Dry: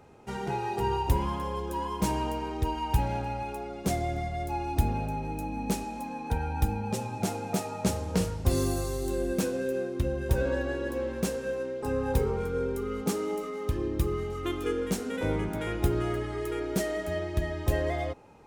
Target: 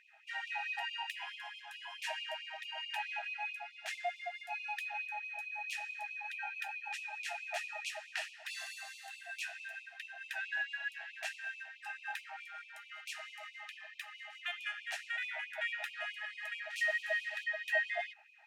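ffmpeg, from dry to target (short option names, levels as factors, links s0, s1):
-filter_complex "[0:a]asettb=1/sr,asplit=3[s0][s1][s2];[s0]atrim=end=16.704[s3];[s1]atrim=start=16.7:end=17.44,asetpts=PTS-STARTPTS,afade=t=in:d=0.004:c=qsin,afade=t=out:st=0.736:d=0.004:c=qsin,acrusher=bits=6:mix=0:aa=0.5[s4];[s2]atrim=start=17.436[s5];[s3][s4]acrossfade=d=0.004:c1=hsin:c2=qsin[s6];[s6][s5]acrossfade=d=0.004:c1=qsin:c2=hsin,asplit=3[s7][s8][s9];[s7]bandpass=f=530:t=q:w=8,volume=1[s10];[s8]bandpass=f=1840:t=q:w=8,volume=0.501[s11];[s9]bandpass=f=2480:t=q:w=8,volume=0.355[s12];[s10][s11][s12]amix=inputs=3:normalize=0,afftfilt=real='re*gte(b*sr/1024,630*pow(2300/630,0.5+0.5*sin(2*PI*4.6*pts/sr)))':imag='im*gte(b*sr/1024,630*pow(2300/630,0.5+0.5*sin(2*PI*4.6*pts/sr)))':win_size=1024:overlap=0.75,volume=6.31"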